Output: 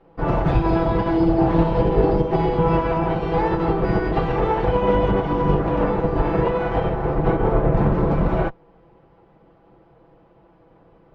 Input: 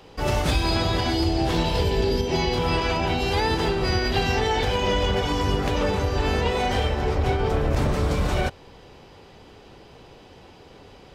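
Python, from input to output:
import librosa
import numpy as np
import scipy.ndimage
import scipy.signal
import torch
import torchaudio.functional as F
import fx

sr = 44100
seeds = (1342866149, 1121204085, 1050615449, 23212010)

y = fx.lower_of_two(x, sr, delay_ms=6.0)
y = scipy.signal.sosfilt(scipy.signal.butter(2, 1100.0, 'lowpass', fs=sr, output='sos'), y)
y = fx.upward_expand(y, sr, threshold_db=-43.0, expansion=1.5)
y = y * librosa.db_to_amplitude(8.5)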